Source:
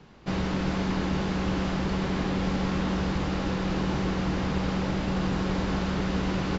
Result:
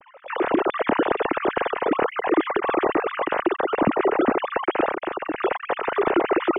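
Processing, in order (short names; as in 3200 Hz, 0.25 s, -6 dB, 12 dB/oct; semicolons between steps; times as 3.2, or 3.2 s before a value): sine-wave speech; LPF 1500 Hz 6 dB/oct; 4.89–5.36 compressor 5:1, threshold -30 dBFS, peak gain reduction 8 dB; gain +5.5 dB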